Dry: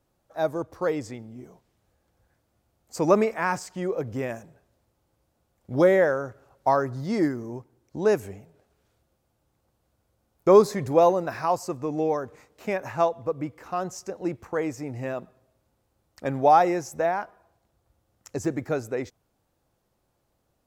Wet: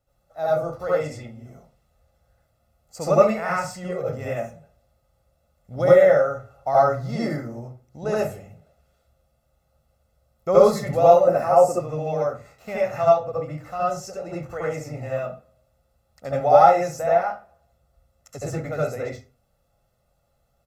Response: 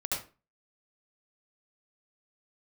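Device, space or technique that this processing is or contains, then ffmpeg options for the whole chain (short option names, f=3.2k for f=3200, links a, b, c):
microphone above a desk: -filter_complex "[0:a]aecho=1:1:1.5:0.64[a];[1:a]atrim=start_sample=2205[b];[a][b]afir=irnorm=-1:irlink=0,asettb=1/sr,asplit=3[c][d][e];[c]atrim=end=11.274[f];[d]atrim=start=11.27:end=11.8,asetpts=PTS-STARTPTS,afade=t=in:d=0.004:c=qsin,afade=t=out:st=0.526:d=0.004:c=qsin,equalizer=f=125:t=o:w=1:g=-4,equalizer=f=250:t=o:w=1:g=9,equalizer=f=500:t=o:w=1:g=7,equalizer=f=4k:t=o:w=1:g=-11,equalizer=f=8k:t=o:w=1:g=6[g];[e]atrim=start=11.796[h];[f][g]acrossfade=d=0.004:c1=hsin:c2=qsin[i];[i][h]acrossfade=d=0.004:c1=qsin:c2=hsin,volume=-4dB"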